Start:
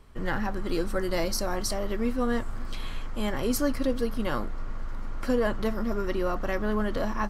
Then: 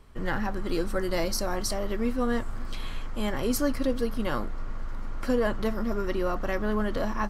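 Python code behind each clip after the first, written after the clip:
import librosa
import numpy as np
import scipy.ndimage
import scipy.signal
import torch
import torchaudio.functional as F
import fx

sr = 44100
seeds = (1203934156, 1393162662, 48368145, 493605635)

y = x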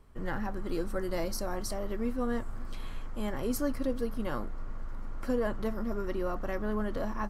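y = fx.peak_eq(x, sr, hz=3600.0, db=-5.5, octaves=2.1)
y = y * librosa.db_to_amplitude(-4.5)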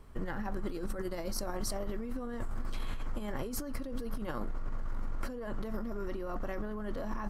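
y = fx.over_compress(x, sr, threshold_db=-36.0, ratio=-1.0)
y = y * librosa.db_to_amplitude(1.0)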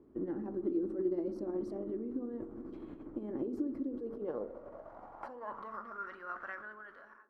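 y = fx.fade_out_tail(x, sr, length_s=0.83)
y = fx.echo_banded(y, sr, ms=61, feedback_pct=82, hz=320.0, wet_db=-11.0)
y = fx.filter_sweep_bandpass(y, sr, from_hz=320.0, to_hz=1500.0, start_s=3.83, end_s=6.15, q=5.4)
y = y * librosa.db_to_amplitude(10.5)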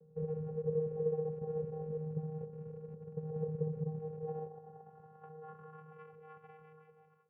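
y = fx.rattle_buzz(x, sr, strikes_db=-50.0, level_db=-30.0)
y = scipy.ndimage.gaussian_filter1d(y, 8.0, mode='constant')
y = fx.vocoder(y, sr, bands=8, carrier='square', carrier_hz=156.0)
y = y * librosa.db_to_amplitude(1.0)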